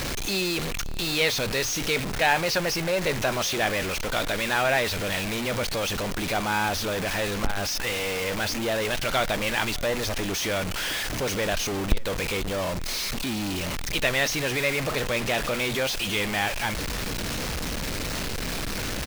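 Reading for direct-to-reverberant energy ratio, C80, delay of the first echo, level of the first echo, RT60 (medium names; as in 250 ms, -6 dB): no reverb, no reverb, 581 ms, -23.5 dB, no reverb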